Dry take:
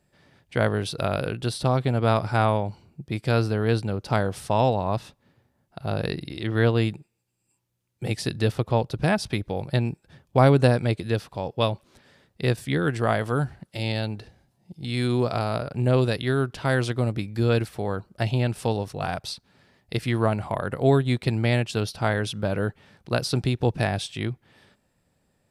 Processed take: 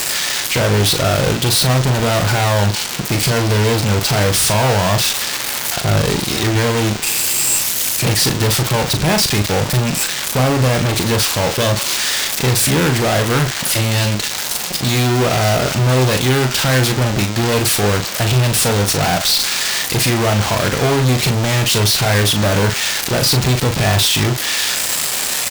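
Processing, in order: switching spikes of -11.5 dBFS; high shelf 6900 Hz -10.5 dB; limiter -14.5 dBFS, peak gain reduction 9 dB; fuzz box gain 36 dB, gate -36 dBFS; doubler 39 ms -7 dB

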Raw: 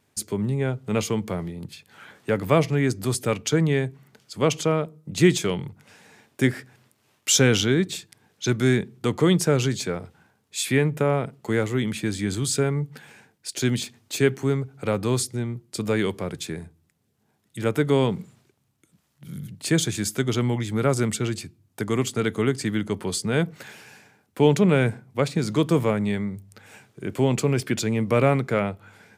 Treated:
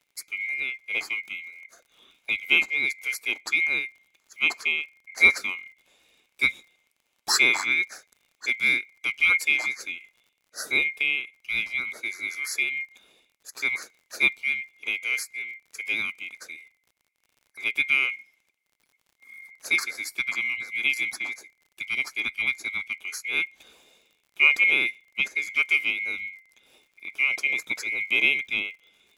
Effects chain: band-swap scrambler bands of 2000 Hz; HPF 75 Hz 6 dB/oct; bell 110 Hz -14 dB 0.81 oct; crackle 58/s -37 dBFS; upward expander 1.5:1, over -33 dBFS

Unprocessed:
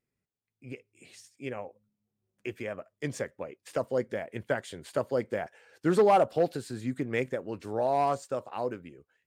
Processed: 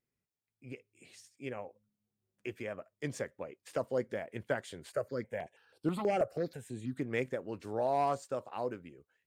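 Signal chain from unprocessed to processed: 4.92–6.97 step phaser 6.2 Hz 930–6600 Hz; gain -4 dB

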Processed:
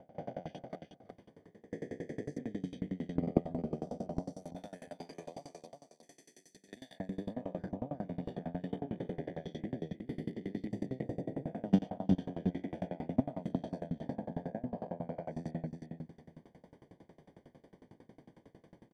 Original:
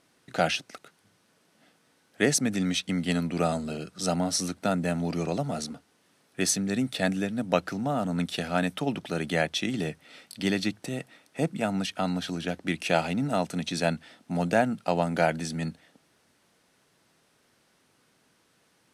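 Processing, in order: spectral swells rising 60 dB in 1.05 s; 4.32–7 differentiator; AGC gain up to 16.5 dB; limiter -9.5 dBFS, peak gain reduction 8.5 dB; level quantiser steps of 17 dB; running mean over 33 samples; feedback echo 0.353 s, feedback 24%, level -6 dB; dB-ramp tremolo decaying 11 Hz, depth 27 dB; gain +3 dB

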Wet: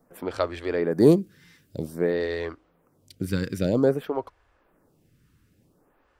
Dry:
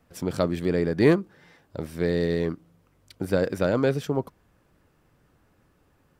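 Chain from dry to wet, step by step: 0.9–1.81 high shelf 5600 Hz -> 8100 Hz +8 dB; photocell phaser 0.52 Hz; gain +3 dB

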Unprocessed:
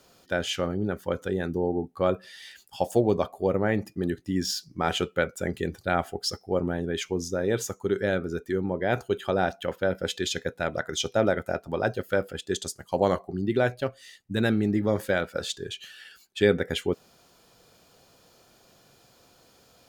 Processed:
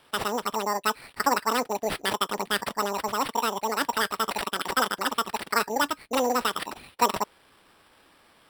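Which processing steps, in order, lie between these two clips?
sample-rate reducer 2800 Hz, jitter 0%; speed mistake 33 rpm record played at 78 rpm

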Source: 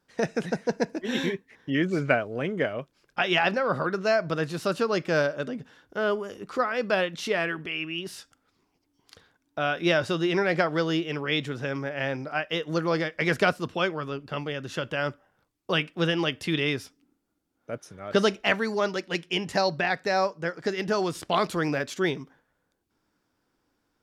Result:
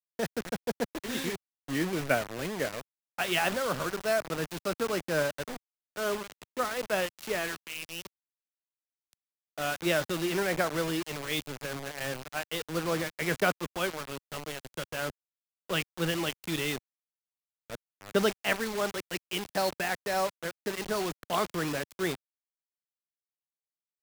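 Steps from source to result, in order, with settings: high shelf 8100 Hz -7.5 dB; bit-crush 5-bit; three-band expander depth 40%; gain -5.5 dB

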